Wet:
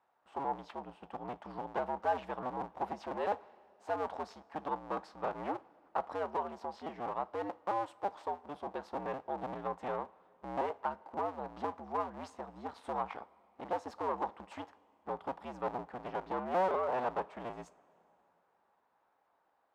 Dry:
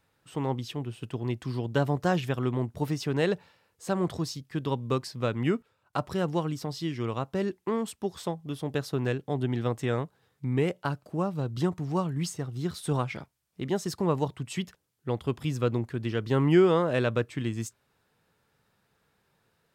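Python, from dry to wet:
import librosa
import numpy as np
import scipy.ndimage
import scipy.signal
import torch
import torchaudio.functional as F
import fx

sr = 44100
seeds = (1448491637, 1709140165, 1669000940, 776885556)

y = fx.cycle_switch(x, sr, every=2, mode='inverted')
y = 10.0 ** (-23.5 / 20.0) * np.tanh(y / 10.0 ** (-23.5 / 20.0))
y = fx.bandpass_q(y, sr, hz=840.0, q=2.9)
y = fx.rev_double_slope(y, sr, seeds[0], early_s=0.26, late_s=3.0, knee_db=-18, drr_db=14.5)
y = y * librosa.db_to_amplitude(5.0)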